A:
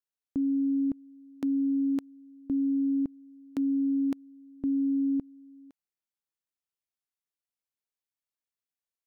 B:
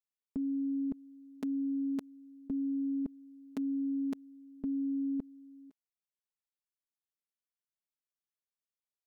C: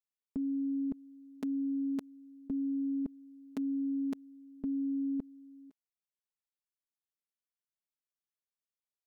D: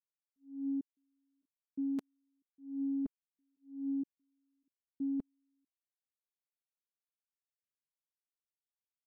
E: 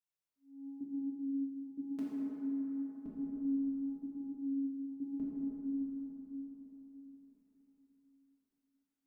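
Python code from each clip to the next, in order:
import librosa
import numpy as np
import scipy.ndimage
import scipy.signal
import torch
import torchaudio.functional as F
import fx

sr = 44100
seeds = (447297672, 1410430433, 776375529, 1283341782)

y1 = x + 0.96 * np.pad(x, (int(4.7 * sr / 1000.0), 0))[:len(x)]
y1 = fx.level_steps(y1, sr, step_db=10)
y1 = y1 * librosa.db_to_amplitude(-3.0)
y2 = y1
y3 = fx.auto_swell(y2, sr, attack_ms=327.0)
y3 = fx.step_gate(y3, sr, bpm=93, pattern='.xxxx.xxx.', floor_db=-60.0, edge_ms=4.5)
y3 = fx.upward_expand(y3, sr, threshold_db=-50.0, expansion=2.5)
y4 = fx.rev_plate(y3, sr, seeds[0], rt60_s=4.6, hf_ratio=0.3, predelay_ms=0, drr_db=-8.0)
y4 = y4 * librosa.db_to_amplitude(-5.5)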